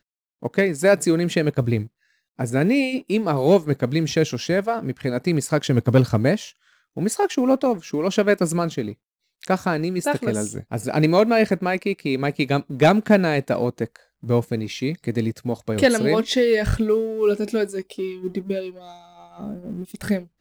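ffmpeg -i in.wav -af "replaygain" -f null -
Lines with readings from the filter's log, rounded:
track_gain = +1.4 dB
track_peak = 0.340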